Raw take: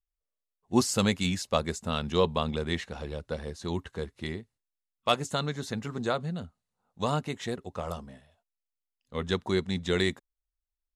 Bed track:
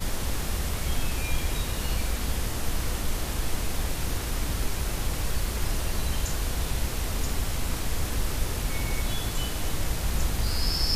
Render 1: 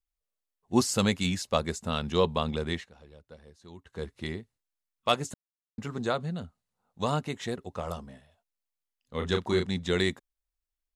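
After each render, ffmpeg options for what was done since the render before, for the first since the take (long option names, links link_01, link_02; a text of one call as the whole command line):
ffmpeg -i in.wav -filter_complex "[0:a]asettb=1/sr,asplit=3[link_01][link_02][link_03];[link_01]atrim=end=9.174[link_04];[link_02]atrim=start=9.17:end=9.66,asetpts=PTS-STARTPTS,afade=type=in:duration=0.004:curve=qsin,afade=type=out:start_time=0.486:duration=0.004:curve=qsin,asplit=2[link_05][link_06];[link_06]adelay=34,volume=-5dB[link_07];[link_05][link_07]amix=inputs=2:normalize=0,atrim=end_sample=21609[link_08];[link_03]atrim=start=9.656[link_09];[link_04][link_08]acrossfade=duration=0.004:curve1=hsin:curve2=qsin[link_10];[link_10][link_09]acrossfade=duration=0.004:curve1=qsin:curve2=hsin,asplit=5[link_11][link_12][link_13][link_14][link_15];[link_11]atrim=end=2.9,asetpts=PTS-STARTPTS,afade=type=out:start_time=2.69:duration=0.21:silence=0.158489[link_16];[link_12]atrim=start=2.9:end=3.84,asetpts=PTS-STARTPTS,volume=-16dB[link_17];[link_13]atrim=start=3.84:end=5.34,asetpts=PTS-STARTPTS,afade=type=in:duration=0.21:silence=0.158489,afade=type=out:start_time=1.496:duration=0.004:curve=hsin[link_18];[link_14]atrim=start=5.34:end=5.78,asetpts=PTS-STARTPTS,volume=0[link_19];[link_15]atrim=start=5.78,asetpts=PTS-STARTPTS,afade=type=in:duration=0.004:curve=hsin[link_20];[link_16][link_17][link_18][link_19][link_20]concat=n=5:v=0:a=1" out.wav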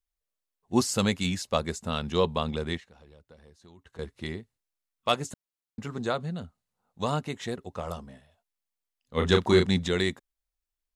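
ffmpeg -i in.wav -filter_complex "[0:a]asettb=1/sr,asplit=3[link_01][link_02][link_03];[link_01]atrim=end=2.774[link_04];[link_02]atrim=start=2.77:end=3.99,asetpts=PTS-STARTPTS,afade=type=in:duration=0.004:curve=qsin,afade=type=out:start_time=1.216:duration=0.004:curve=qsin,acompressor=threshold=-47dB:ratio=6:attack=3.2:release=140:knee=1:detection=peak[link_05];[link_03]atrim=start=3.986[link_06];[link_04][link_05]acrossfade=duration=0.004:curve1=hsin:curve2=qsin[link_07];[link_07][link_06]acrossfade=duration=0.004:curve1=qsin:curve2=hsin,asplit=3[link_08][link_09][link_10];[link_08]afade=type=out:start_time=9.16:duration=0.02[link_11];[link_09]acontrast=59,afade=type=in:start_time=9.16:duration=0.02,afade=type=out:start_time=9.87:duration=0.02[link_12];[link_10]afade=type=in:start_time=9.87:duration=0.02[link_13];[link_11][link_12][link_13]amix=inputs=3:normalize=0" out.wav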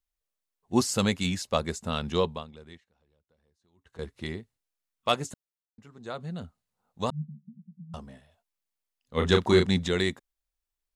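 ffmpeg -i in.wav -filter_complex "[0:a]asettb=1/sr,asplit=3[link_01][link_02][link_03];[link_01]atrim=end=7.104[link_04];[link_02]atrim=start=7.1:end=7.94,asetpts=PTS-STARTPTS,afade=type=in:duration=0.004:curve=qsin,afade=type=out:start_time=0.836:duration=0.004:curve=qsin,asuperpass=centerf=180:order=12:qfactor=2.5[link_05];[link_03]atrim=start=7.936[link_06];[link_04][link_05]acrossfade=duration=0.004:curve1=hsin:curve2=qsin[link_07];[link_07][link_06]acrossfade=duration=0.004:curve1=qsin:curve2=hsin,asplit=5[link_08][link_09][link_10][link_11][link_12];[link_08]atrim=end=2.47,asetpts=PTS-STARTPTS,afade=type=out:start_time=2.16:duration=0.31:silence=0.141254[link_13];[link_09]atrim=start=2.47:end=3.72,asetpts=PTS-STARTPTS,volume=-17dB[link_14];[link_10]atrim=start=3.72:end=5.69,asetpts=PTS-STARTPTS,afade=type=in:duration=0.31:silence=0.141254,afade=type=out:start_time=1.53:duration=0.44:silence=0.16788[link_15];[link_11]atrim=start=5.69:end=6,asetpts=PTS-STARTPTS,volume=-15.5dB[link_16];[link_12]atrim=start=6,asetpts=PTS-STARTPTS,afade=type=in:duration=0.44:silence=0.16788[link_17];[link_13][link_14][link_15][link_16][link_17]concat=n=5:v=0:a=1" out.wav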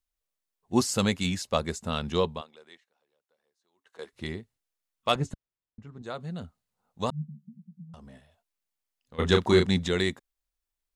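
ffmpeg -i in.wav -filter_complex "[0:a]asettb=1/sr,asplit=3[link_01][link_02][link_03];[link_01]atrim=end=2.414[link_04];[link_02]atrim=start=2.41:end=4.13,asetpts=PTS-STARTPTS,afade=type=in:duration=0.004:curve=qsin,afade=type=out:start_time=1.716:duration=0.004:curve=qsin,highpass=470[link_05];[link_03]atrim=start=4.126[link_06];[link_04][link_05]acrossfade=duration=0.004:curve1=hsin:curve2=qsin[link_07];[link_07][link_06]acrossfade=duration=0.004:curve1=qsin:curve2=hsin,asettb=1/sr,asplit=3[link_08][link_09][link_10];[link_08]atrim=end=5.154[link_11];[link_09]atrim=start=5.15:end=6.02,asetpts=PTS-STARTPTS,afade=type=in:duration=0.004:curve=qsin,afade=type=out:start_time=0.866:duration=0.004:curve=qsin,aemphasis=mode=reproduction:type=bsi[link_12];[link_10]atrim=start=6.016[link_13];[link_11][link_12]acrossfade=duration=0.004:curve1=hsin:curve2=qsin[link_14];[link_14][link_13]acrossfade=duration=0.004:curve1=qsin:curve2=hsin,asplit=3[link_15][link_16][link_17];[link_15]afade=type=out:start_time=7.86:duration=0.02[link_18];[link_16]acompressor=threshold=-44dB:ratio=6:attack=3.2:release=140:knee=1:detection=peak,afade=type=in:start_time=7.86:duration=0.02,afade=type=out:start_time=9.18:duration=0.02[link_19];[link_17]afade=type=in:start_time=9.18:duration=0.02[link_20];[link_18][link_19][link_20]amix=inputs=3:normalize=0" out.wav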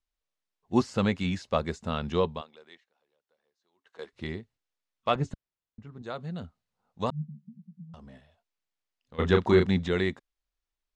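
ffmpeg -i in.wav -filter_complex "[0:a]acrossover=split=2700[link_01][link_02];[link_02]acompressor=threshold=-40dB:ratio=4:attack=1:release=60[link_03];[link_01][link_03]amix=inputs=2:normalize=0,lowpass=5500" out.wav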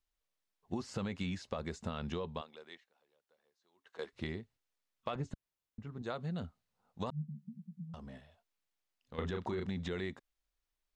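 ffmpeg -i in.wav -af "alimiter=limit=-20.5dB:level=0:latency=1:release=40,acompressor=threshold=-35dB:ratio=6" out.wav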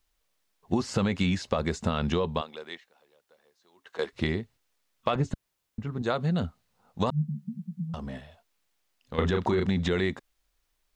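ffmpeg -i in.wav -af "volume=12dB" out.wav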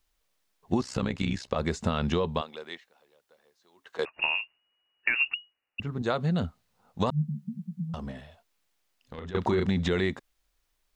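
ffmpeg -i in.wav -filter_complex "[0:a]asettb=1/sr,asplit=3[link_01][link_02][link_03];[link_01]atrim=end=0.814[link_04];[link_02]atrim=start=0.81:end=1.56,asetpts=PTS-STARTPTS,afade=type=in:duration=0.004:curve=qsin,afade=type=out:start_time=0.746:duration=0.004:curve=qsin,tremolo=f=64:d=0.824[link_05];[link_03]atrim=start=1.556[link_06];[link_04][link_05]acrossfade=duration=0.004:curve1=hsin:curve2=qsin[link_07];[link_07][link_06]acrossfade=duration=0.004:curve1=qsin:curve2=hsin,asettb=1/sr,asplit=3[link_08][link_09][link_10];[link_08]atrim=end=4.054[link_11];[link_09]atrim=start=4.05:end=5.8,asetpts=PTS-STARTPTS,afade=type=in:duration=0.004:curve=qsin,afade=type=out:start_time=1.746:duration=0.004:curve=qsin,lowpass=frequency=2500:width_type=q:width=0.5098,lowpass=frequency=2500:width_type=q:width=0.6013,lowpass=frequency=2500:width_type=q:width=0.9,lowpass=frequency=2500:width_type=q:width=2.563,afreqshift=-2900[link_12];[link_10]atrim=start=5.796[link_13];[link_11][link_12]acrossfade=duration=0.004:curve1=hsin:curve2=qsin[link_14];[link_14][link_13]acrossfade=duration=0.004:curve1=qsin:curve2=hsin,asettb=1/sr,asplit=3[link_15][link_16][link_17];[link_15]atrim=end=8.114[link_18];[link_16]atrim=start=8.11:end=9.35,asetpts=PTS-STARTPTS,afade=type=in:duration=0.004:curve=qsin,afade=type=out:start_time=1.236:duration=0.004:curve=qsin,acompressor=threshold=-37dB:ratio=6:attack=3.2:release=140:knee=1:detection=peak[link_19];[link_17]atrim=start=9.346[link_20];[link_18][link_19]acrossfade=duration=0.004:curve1=hsin:curve2=qsin[link_21];[link_21][link_20]acrossfade=duration=0.004:curve1=qsin:curve2=hsin" out.wav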